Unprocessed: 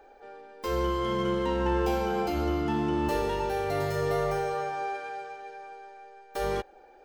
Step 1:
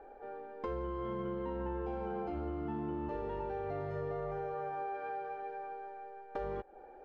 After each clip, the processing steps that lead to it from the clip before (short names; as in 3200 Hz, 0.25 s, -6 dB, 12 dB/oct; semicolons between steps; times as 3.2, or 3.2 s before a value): Bessel low-pass 1200 Hz, order 2; compressor 6:1, threshold -38 dBFS, peak gain reduction 14 dB; gain +2 dB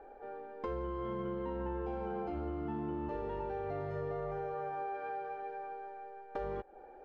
nothing audible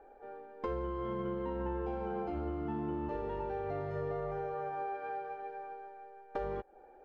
upward expander 1.5:1, over -48 dBFS; gain +2.5 dB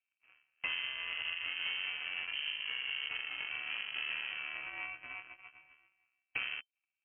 added harmonics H 7 -17 dB, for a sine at -23 dBFS; inverted band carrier 3100 Hz